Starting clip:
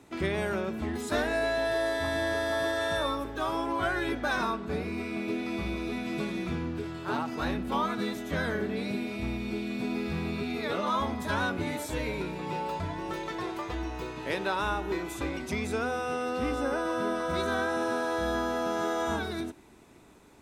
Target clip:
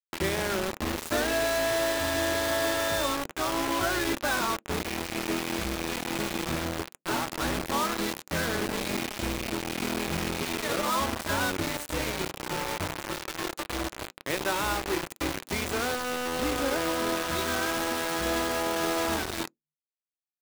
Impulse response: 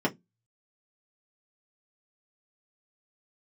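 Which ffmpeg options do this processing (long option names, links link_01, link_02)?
-filter_complex "[0:a]asettb=1/sr,asplit=3[link_01][link_02][link_03];[link_01]atrim=end=17.224[link_04];[link_02]atrim=start=17.22:end=18.26,asetpts=PTS-STARTPTS,afade=type=in:duration=0.004:curve=qsin,afade=type=out:start_time=1.036:duration=0.004:curve=qsin,equalizer=frequency=540:width_type=o:width=0.77:gain=-5[link_05];[link_03]atrim=start=18.256[link_06];[link_04][link_05]acrossfade=duration=0.004:curve1=hsin:curve2=qsin[link_07];[link_07][link_06]acrossfade=duration=0.004:curve1=qsin:curve2=hsin,acrusher=bits=4:mix=0:aa=0.000001,asplit=2[link_08][link_09];[1:a]atrim=start_sample=2205,asetrate=57330,aresample=44100[link_10];[link_09][link_10]afir=irnorm=-1:irlink=0,volume=-28dB[link_11];[link_08][link_11]amix=inputs=2:normalize=0"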